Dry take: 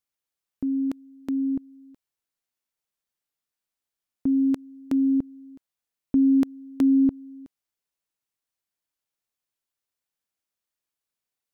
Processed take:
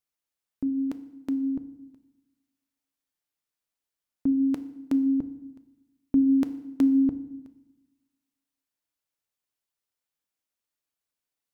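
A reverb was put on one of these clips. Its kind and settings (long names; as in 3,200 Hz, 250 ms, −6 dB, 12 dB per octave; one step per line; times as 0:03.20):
feedback delay network reverb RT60 0.94 s, low-frequency decay 1.4×, high-frequency decay 0.85×, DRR 10.5 dB
level −1.5 dB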